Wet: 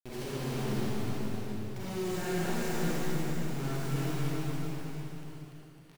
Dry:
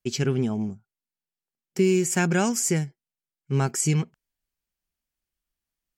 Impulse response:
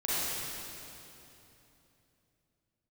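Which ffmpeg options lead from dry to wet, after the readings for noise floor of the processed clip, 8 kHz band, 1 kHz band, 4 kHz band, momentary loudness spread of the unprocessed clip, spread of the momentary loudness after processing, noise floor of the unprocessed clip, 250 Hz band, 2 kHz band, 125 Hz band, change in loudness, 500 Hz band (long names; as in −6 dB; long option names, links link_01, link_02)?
−52 dBFS, −16.0 dB, −5.5 dB, −5.5 dB, 12 LU, 10 LU, below −85 dBFS, −7.5 dB, −8.0 dB, −7.0 dB, −10.5 dB, −8.5 dB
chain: -filter_complex "[0:a]lowpass=2700,bandreject=frequency=50:width_type=h:width=6,bandreject=frequency=100:width_type=h:width=6,bandreject=frequency=150:width_type=h:width=6,bandreject=frequency=200:width_type=h:width=6,bandreject=frequency=250:width_type=h:width=6,bandreject=frequency=300:width_type=h:width=6,bandreject=frequency=350:width_type=h:width=6,acompressor=mode=upward:threshold=-32dB:ratio=2.5,alimiter=limit=-21dB:level=0:latency=1:release=439,areverse,acompressor=threshold=-35dB:ratio=20,areverse,asoftclip=type=tanh:threshold=-32.5dB,acrusher=bits=5:dc=4:mix=0:aa=0.000001,aecho=1:1:290|551|785.9|997.3|1188:0.631|0.398|0.251|0.158|0.1[link_01];[1:a]atrim=start_sample=2205[link_02];[link_01][link_02]afir=irnorm=-1:irlink=0,volume=1dB"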